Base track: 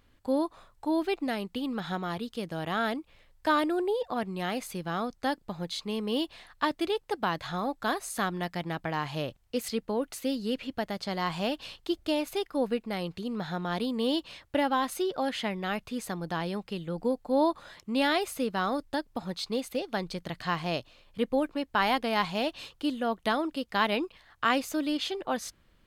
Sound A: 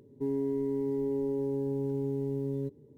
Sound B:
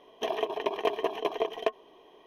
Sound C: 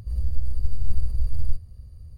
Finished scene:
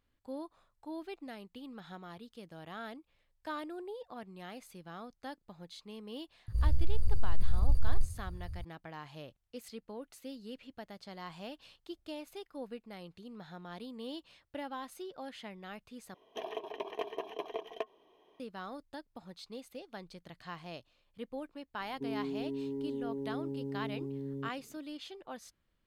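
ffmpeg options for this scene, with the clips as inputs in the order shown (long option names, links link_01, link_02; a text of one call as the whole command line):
ffmpeg -i bed.wav -i cue0.wav -i cue1.wav -i cue2.wav -filter_complex "[0:a]volume=-14.5dB[link_01];[3:a]asoftclip=type=tanh:threshold=-14.5dB[link_02];[1:a]equalizer=frequency=220:width=1.5:gain=8.5[link_03];[link_01]asplit=2[link_04][link_05];[link_04]atrim=end=16.144[link_06];[2:a]atrim=end=2.26,asetpts=PTS-STARTPTS,volume=-10dB[link_07];[link_05]atrim=start=18.396[link_08];[link_02]atrim=end=2.17,asetpts=PTS-STARTPTS,afade=type=in:duration=0.004:curve=hsin,afade=type=out:start_time=2.166:duration=0.004:curve=hsin,adelay=6480[link_09];[link_03]atrim=end=2.97,asetpts=PTS-STARTPTS,volume=-10.5dB,afade=type=in:duration=0.004:curve=hsin,afade=type=out:start_time=2.966:duration=0.004:curve=hsin,adelay=961380S[link_10];[link_06][link_07]acrossfade=duration=0.004:curve1=hsin:curve2=hsin[link_11];[link_11][link_08]acrossfade=duration=0.004:curve1=hsin:curve2=hsin[link_12];[link_12][link_09][link_10]amix=inputs=3:normalize=0" out.wav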